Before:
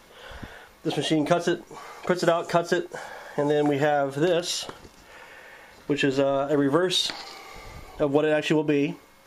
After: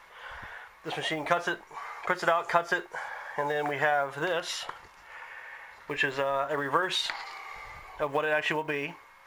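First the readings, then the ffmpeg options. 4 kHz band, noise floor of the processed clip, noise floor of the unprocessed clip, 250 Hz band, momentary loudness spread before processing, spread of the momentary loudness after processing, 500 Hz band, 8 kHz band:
-5.5 dB, -55 dBFS, -53 dBFS, -14.5 dB, 19 LU, 17 LU, -7.5 dB, -8.0 dB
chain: -af "acrusher=bits=8:mode=log:mix=0:aa=0.000001,equalizer=f=250:t=o:w=1:g=-9,equalizer=f=1k:t=o:w=1:g=11,equalizer=f=2k:t=o:w=1:g=11,volume=-9dB"

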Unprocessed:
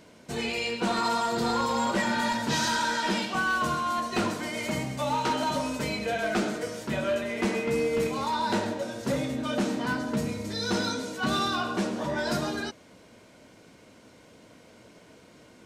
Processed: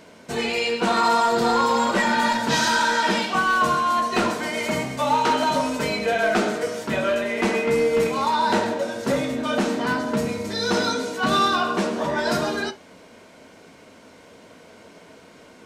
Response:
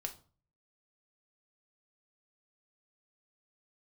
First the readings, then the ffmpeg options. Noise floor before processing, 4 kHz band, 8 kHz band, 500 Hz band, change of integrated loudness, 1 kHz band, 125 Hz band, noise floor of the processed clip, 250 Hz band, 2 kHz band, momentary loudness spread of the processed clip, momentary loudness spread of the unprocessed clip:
-54 dBFS, +5.5 dB, +4.5 dB, +7.5 dB, +6.5 dB, +8.0 dB, +2.0 dB, -48 dBFS, +4.0 dB, +6.5 dB, 6 LU, 5 LU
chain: -filter_complex "[0:a]lowshelf=f=320:g=-8.5,asplit=2[a][b];[1:a]atrim=start_sample=2205,atrim=end_sample=3528,highshelf=f=3.4k:g=-12[c];[b][c]afir=irnorm=-1:irlink=0,volume=5.5dB[d];[a][d]amix=inputs=2:normalize=0,volume=1.5dB"

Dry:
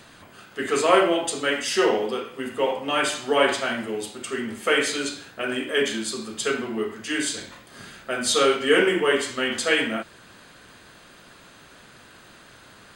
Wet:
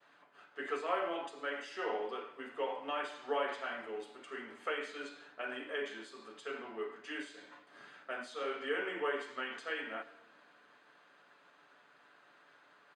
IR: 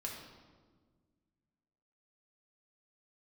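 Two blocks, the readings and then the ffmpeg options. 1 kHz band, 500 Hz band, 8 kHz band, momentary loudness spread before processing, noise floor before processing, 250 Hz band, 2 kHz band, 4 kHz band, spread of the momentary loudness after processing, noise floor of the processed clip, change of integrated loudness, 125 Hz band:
-13.0 dB, -16.0 dB, -31.0 dB, 13 LU, -50 dBFS, -20.0 dB, -15.0 dB, -20.5 dB, 12 LU, -65 dBFS, -16.5 dB, under -25 dB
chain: -filter_complex "[0:a]aderivative,aecho=1:1:6.9:0.38,agate=range=-33dB:threshold=-53dB:ratio=3:detection=peak,highpass=140,equalizer=f=390:w=0.32:g=2.5,acompressor=threshold=-35dB:ratio=3,lowpass=1.2k,asplit=2[a][b];[1:a]atrim=start_sample=2205,adelay=103[c];[b][c]afir=irnorm=-1:irlink=0,volume=-16.5dB[d];[a][d]amix=inputs=2:normalize=0,volume=7.5dB"

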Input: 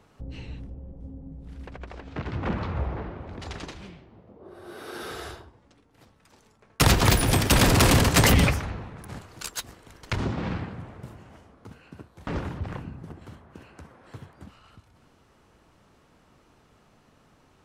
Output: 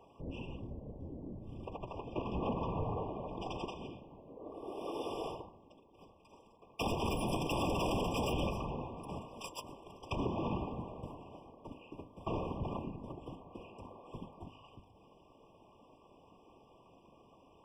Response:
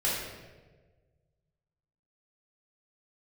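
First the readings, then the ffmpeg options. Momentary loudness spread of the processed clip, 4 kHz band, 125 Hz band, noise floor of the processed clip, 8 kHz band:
18 LU, -16.5 dB, -15.5 dB, -63 dBFS, -23.5 dB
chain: -filter_complex "[0:a]asplit=2[a][b];[b]alimiter=limit=-20dB:level=0:latency=1:release=444,volume=2dB[c];[a][c]amix=inputs=2:normalize=0,afftfilt=real='hypot(re,im)*cos(2*PI*random(0))':imag='hypot(re,im)*sin(2*PI*random(1))':win_size=512:overlap=0.75,bass=f=250:g=-9,treble=f=4k:g=-3,bandreject=f=51.61:t=h:w=4,bandreject=f=103.22:t=h:w=4,bandreject=f=154.83:t=h:w=4,bandreject=f=206.44:t=h:w=4,bandreject=f=258.05:t=h:w=4,bandreject=f=309.66:t=h:w=4,bandreject=f=361.27:t=h:w=4,bandreject=f=412.88:t=h:w=4,bandreject=f=464.49:t=h:w=4,bandreject=f=516.1:t=h:w=4,bandreject=f=567.71:t=h:w=4,bandreject=f=619.32:t=h:w=4,bandreject=f=670.93:t=h:w=4,bandreject=f=722.54:t=h:w=4,bandreject=f=774.15:t=h:w=4,bandreject=f=825.76:t=h:w=4,bandreject=f=877.37:t=h:w=4,bandreject=f=928.98:t=h:w=4,bandreject=f=980.59:t=h:w=4,bandreject=f=1.0322k:t=h:w=4,bandreject=f=1.08381k:t=h:w=4,asoftclip=type=tanh:threshold=-21dB,acompressor=threshold=-33dB:ratio=2.5,highshelf=f=3.5k:g=-11.5,afftfilt=real='re*eq(mod(floor(b*sr/1024/1200),2),0)':imag='im*eq(mod(floor(b*sr/1024/1200),2),0)':win_size=1024:overlap=0.75,volume=1.5dB"

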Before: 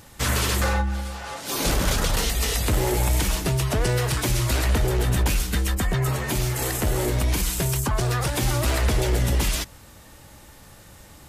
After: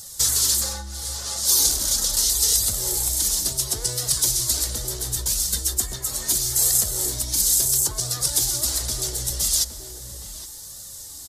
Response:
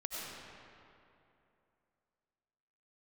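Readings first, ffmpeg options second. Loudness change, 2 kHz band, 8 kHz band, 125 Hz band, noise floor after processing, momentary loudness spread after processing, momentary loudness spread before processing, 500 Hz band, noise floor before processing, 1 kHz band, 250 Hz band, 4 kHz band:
+3.5 dB, -12.5 dB, +11.0 dB, -11.5 dB, -39 dBFS, 17 LU, 3 LU, -11.0 dB, -48 dBFS, -11.0 dB, -12.5 dB, +5.0 dB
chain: -filter_complex "[0:a]highshelf=f=12k:g=-10.5,acompressor=threshold=-27dB:ratio=3,flanger=delay=1.4:depth=2.4:regen=-28:speed=0.74:shape=triangular,aexciter=amount=12.8:drive=6.2:freq=3.9k,asplit=2[a][b];[b]adelay=816.3,volume=-8dB,highshelf=f=4k:g=-18.4[c];[a][c]amix=inputs=2:normalize=0,asplit=2[d][e];[1:a]atrim=start_sample=2205[f];[e][f]afir=irnorm=-1:irlink=0,volume=-19dB[g];[d][g]amix=inputs=2:normalize=0,volume=-3.5dB"

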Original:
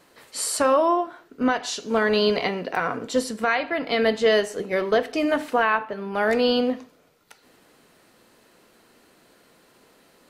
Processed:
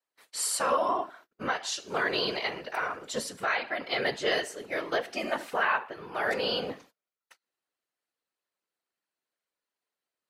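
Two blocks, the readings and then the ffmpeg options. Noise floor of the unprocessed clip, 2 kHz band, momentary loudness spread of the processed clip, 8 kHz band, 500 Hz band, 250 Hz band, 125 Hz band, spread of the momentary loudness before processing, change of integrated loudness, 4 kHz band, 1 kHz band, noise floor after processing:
-58 dBFS, -4.0 dB, 8 LU, -3.0 dB, -10.0 dB, -14.0 dB, -8.0 dB, 7 LU, -7.0 dB, -3.5 dB, -6.0 dB, under -85 dBFS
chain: -af "highpass=f=980:p=1,agate=range=-28dB:threshold=-50dB:ratio=16:detection=peak,afftfilt=real='hypot(re,im)*cos(2*PI*random(0))':imag='hypot(re,im)*sin(2*PI*random(1))':win_size=512:overlap=0.75,volume=3dB"

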